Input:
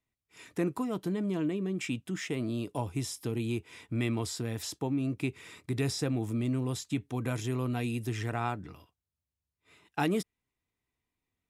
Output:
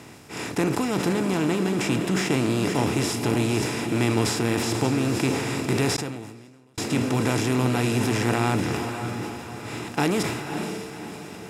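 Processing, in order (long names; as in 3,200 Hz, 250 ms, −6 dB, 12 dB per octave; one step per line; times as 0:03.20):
compressor on every frequency bin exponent 0.4
feedback delay with all-pass diffusion 536 ms, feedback 47%, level −6.5 dB
0:05.96–0:06.78: gate with flip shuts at −23 dBFS, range −41 dB
level that may fall only so fast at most 43 dB per second
level +2.5 dB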